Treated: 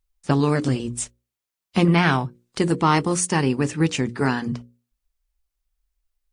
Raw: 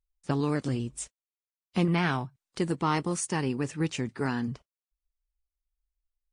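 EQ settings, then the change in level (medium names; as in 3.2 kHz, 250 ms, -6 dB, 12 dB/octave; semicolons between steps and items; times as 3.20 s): hum notches 60/120/180/240/300/360/420/480/540 Hz; +9.0 dB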